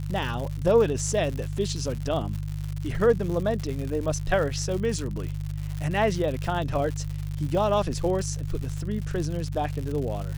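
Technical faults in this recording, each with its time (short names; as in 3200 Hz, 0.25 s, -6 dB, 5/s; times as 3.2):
crackle 140/s -31 dBFS
hum 50 Hz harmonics 3 -31 dBFS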